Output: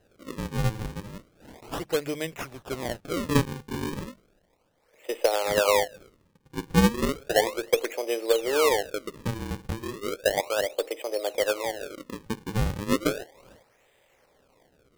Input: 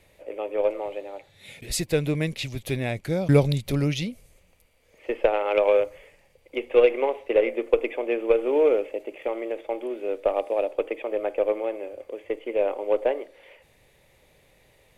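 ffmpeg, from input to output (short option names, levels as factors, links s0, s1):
-af "bass=f=250:g=-14,treble=f=4000:g=-5,bandreject=f=50:t=h:w=6,bandreject=f=100:t=h:w=6,bandreject=f=150:t=h:w=6,bandreject=f=200:t=h:w=6,acrusher=samples=38:mix=1:aa=0.000001:lfo=1:lforange=60.8:lforate=0.34,volume=0.891"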